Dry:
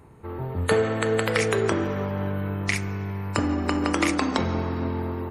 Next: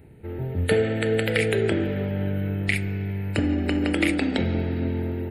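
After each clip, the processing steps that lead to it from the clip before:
phaser with its sweep stopped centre 2,600 Hz, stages 4
level +2.5 dB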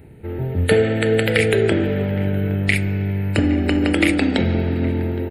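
slap from a distant wall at 140 metres, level −17 dB
level +5.5 dB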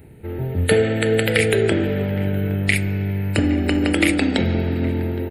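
high-shelf EQ 5,900 Hz +7 dB
level −1 dB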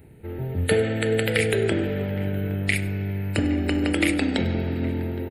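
single-tap delay 99 ms −18.5 dB
level −4.5 dB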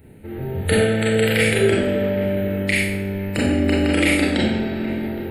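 four-comb reverb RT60 0.58 s, combs from 29 ms, DRR −4 dB

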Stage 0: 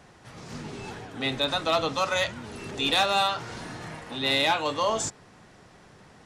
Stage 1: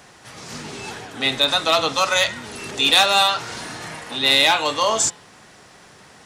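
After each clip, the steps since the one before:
spectral tilt +2 dB per octave
hum removal 170.6 Hz, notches 25
level +6.5 dB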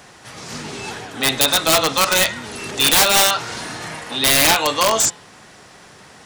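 wrap-around overflow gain 10 dB
level +3 dB

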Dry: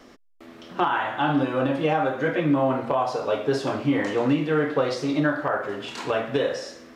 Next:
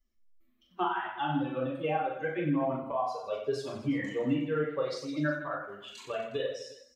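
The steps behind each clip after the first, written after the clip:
spectral dynamics exaggerated over time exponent 2
on a send: reverse bouncing-ball delay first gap 40 ms, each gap 1.3×, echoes 5
on the sum: level −5.5 dB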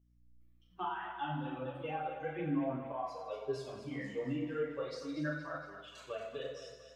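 multi-voice chorus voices 2, 0.36 Hz, delay 11 ms, depth 5 ms
mains hum 60 Hz, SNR 30 dB
echo with a time of its own for lows and highs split 500 Hz, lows 98 ms, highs 232 ms, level −10 dB
level −5 dB

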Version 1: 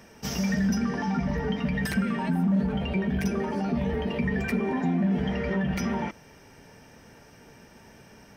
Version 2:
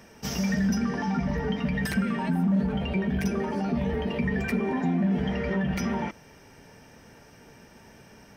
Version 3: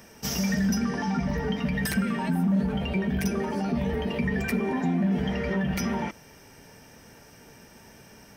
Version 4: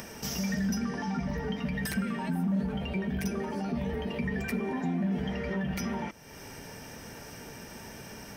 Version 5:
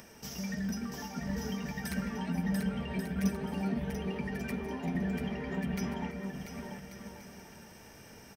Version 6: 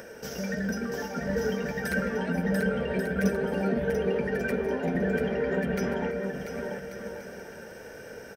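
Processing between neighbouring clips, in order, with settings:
no processing that can be heard
high-shelf EQ 6,400 Hz +9.5 dB
upward compression, threshold −28 dBFS; level −5 dB
bouncing-ball delay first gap 690 ms, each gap 0.65×, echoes 5; expander for the loud parts 1.5 to 1, over −38 dBFS; level −2 dB
hollow resonant body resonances 500/1,500 Hz, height 17 dB, ringing for 20 ms; level +1.5 dB

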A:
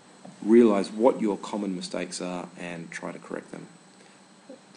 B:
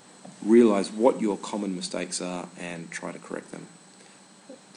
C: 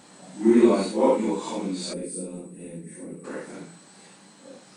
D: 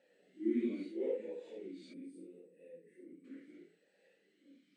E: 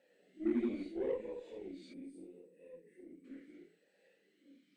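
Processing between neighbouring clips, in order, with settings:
high-shelf EQ 6,000 Hz +8 dB
random phases in long frames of 200 ms; gain on a spectral selection 0:01.93–0:03.24, 540–7,900 Hz −19 dB; level +1 dB
formant filter swept between two vowels e-i 0.75 Hz; level −7.5 dB
harmonic generator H 8 −29 dB, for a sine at −23.5 dBFS

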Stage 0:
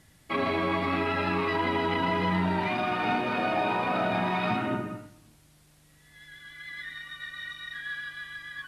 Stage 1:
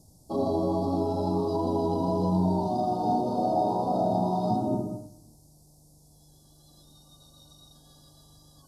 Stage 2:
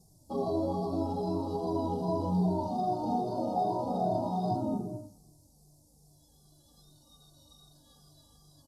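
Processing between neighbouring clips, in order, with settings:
Chebyshev band-stop filter 810–5,000 Hz, order 3; level +3.5 dB
barber-pole flanger 2.1 ms −2.5 Hz; level −1.5 dB

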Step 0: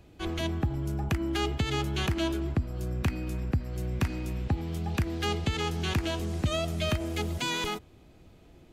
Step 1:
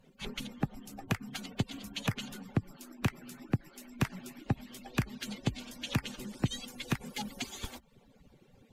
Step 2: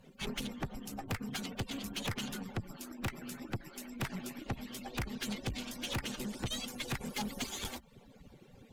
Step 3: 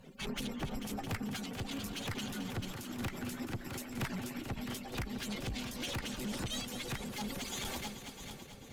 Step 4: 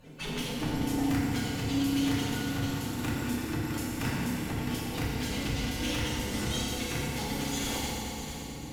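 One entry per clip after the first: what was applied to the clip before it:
harmonic-percussive split with one part muted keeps percussive
tube saturation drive 38 dB, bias 0.55; level +6.5 dB
echo machine with several playback heads 220 ms, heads all three, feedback 47%, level −16.5 dB; brickwall limiter −35 dBFS, peak gain reduction 8.5 dB; amplitude modulation by smooth noise, depth 55%; level +7 dB
feedback delay network reverb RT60 2.2 s, low-frequency decay 1.45×, high-frequency decay 0.85×, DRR −6 dB

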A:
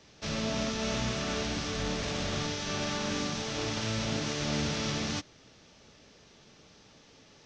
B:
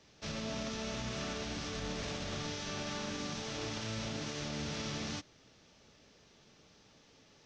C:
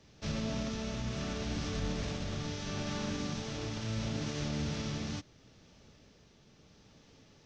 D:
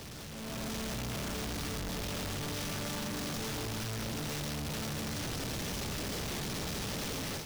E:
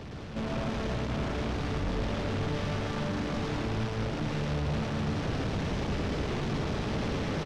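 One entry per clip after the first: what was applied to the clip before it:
brickwall limiter −24 dBFS, peak gain reduction 4.5 dB; level −5.5 dB
low-shelf EQ 270 Hz +9.5 dB; shaped tremolo triangle 0.74 Hz, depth 30%
sign of each sample alone; automatic gain control gain up to 9 dB; level −8 dB
log-companded quantiser 4 bits; head-to-tape spacing loss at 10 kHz 28 dB; loudspeakers that aren't time-aligned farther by 38 metres −4 dB, 70 metres −11 dB; level +8.5 dB

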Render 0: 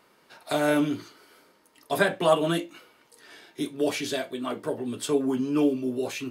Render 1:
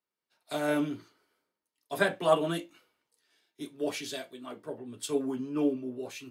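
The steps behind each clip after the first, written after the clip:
multiband upward and downward expander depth 70%
level −7 dB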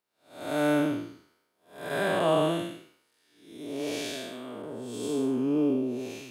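spectrum smeared in time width 279 ms
level +7 dB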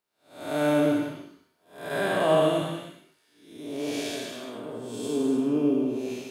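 reverb whose tail is shaped and stops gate 310 ms flat, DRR 3.5 dB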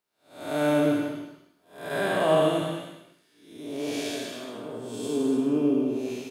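single-tap delay 228 ms −15.5 dB

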